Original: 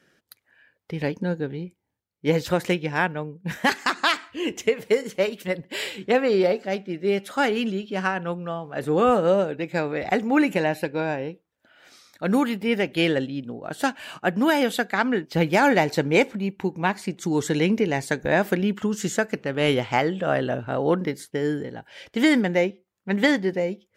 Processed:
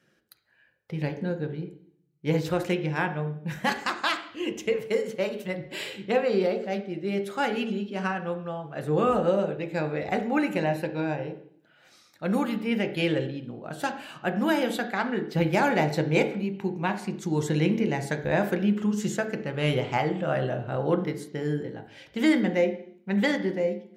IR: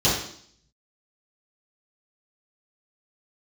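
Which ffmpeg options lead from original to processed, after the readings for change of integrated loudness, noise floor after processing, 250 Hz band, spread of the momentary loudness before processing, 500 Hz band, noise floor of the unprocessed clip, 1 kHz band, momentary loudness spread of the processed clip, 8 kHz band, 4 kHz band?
−3.5 dB, −63 dBFS, −3.0 dB, 10 LU, −4.0 dB, −75 dBFS, −4.0 dB, 10 LU, −6.0 dB, −5.5 dB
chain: -filter_complex "[0:a]asplit=2[link_01][link_02];[1:a]atrim=start_sample=2205,lowpass=3500[link_03];[link_02][link_03]afir=irnorm=-1:irlink=0,volume=-22dB[link_04];[link_01][link_04]amix=inputs=2:normalize=0,volume=-6dB"

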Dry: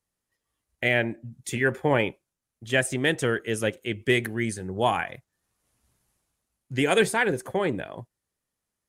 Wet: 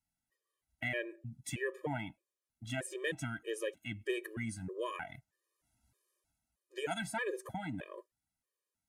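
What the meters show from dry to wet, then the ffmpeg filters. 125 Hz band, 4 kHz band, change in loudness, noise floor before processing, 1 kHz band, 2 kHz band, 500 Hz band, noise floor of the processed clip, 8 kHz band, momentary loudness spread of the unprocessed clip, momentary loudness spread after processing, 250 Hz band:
−13.0 dB, −14.5 dB, −14.0 dB, −85 dBFS, −14.5 dB, −14.0 dB, −14.5 dB, below −85 dBFS, −12.0 dB, 11 LU, 11 LU, −14.0 dB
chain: -af "acompressor=threshold=-31dB:ratio=2,afftfilt=real='re*gt(sin(2*PI*1.6*pts/sr)*(1-2*mod(floor(b*sr/1024/320),2)),0)':imag='im*gt(sin(2*PI*1.6*pts/sr)*(1-2*mod(floor(b*sr/1024/320),2)),0)':win_size=1024:overlap=0.75,volume=-4.5dB"

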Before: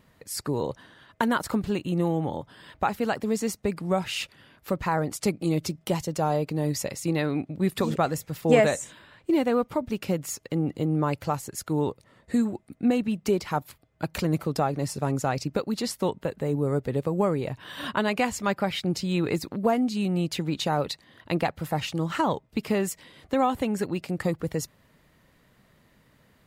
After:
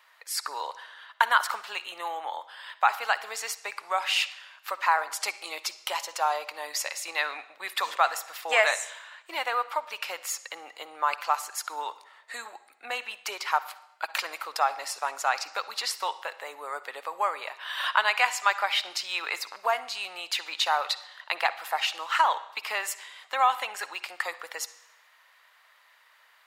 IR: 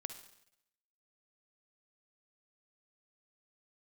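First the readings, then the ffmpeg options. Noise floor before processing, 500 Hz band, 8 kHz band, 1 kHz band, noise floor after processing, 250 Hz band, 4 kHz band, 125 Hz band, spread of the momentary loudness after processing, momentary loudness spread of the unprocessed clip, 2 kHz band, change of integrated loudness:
−63 dBFS, −9.5 dB, +1.5 dB, +3.5 dB, −60 dBFS, −32.5 dB, +6.0 dB, below −40 dB, 13 LU, 7 LU, +7.0 dB, −1.5 dB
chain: -filter_complex "[0:a]highpass=frequency=890:width=0.5412,highpass=frequency=890:width=1.3066,asplit=2[link_01][link_02];[1:a]atrim=start_sample=2205,lowpass=5600[link_03];[link_02][link_03]afir=irnorm=-1:irlink=0,volume=1.5dB[link_04];[link_01][link_04]amix=inputs=2:normalize=0,volume=2dB"

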